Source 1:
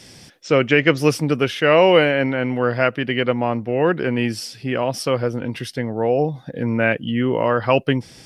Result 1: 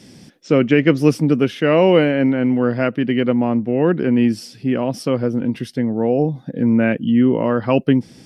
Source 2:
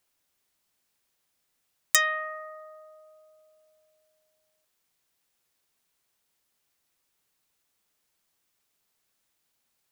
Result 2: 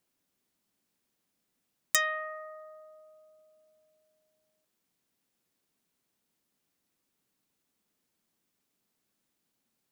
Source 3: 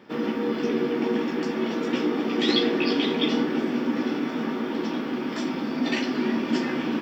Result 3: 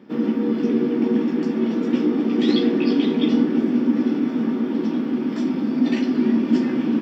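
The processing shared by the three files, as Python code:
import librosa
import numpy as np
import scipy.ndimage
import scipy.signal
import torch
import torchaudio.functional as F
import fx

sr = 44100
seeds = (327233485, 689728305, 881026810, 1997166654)

y = fx.peak_eq(x, sr, hz=230.0, db=13.0, octaves=1.7)
y = y * librosa.db_to_amplitude(-5.0)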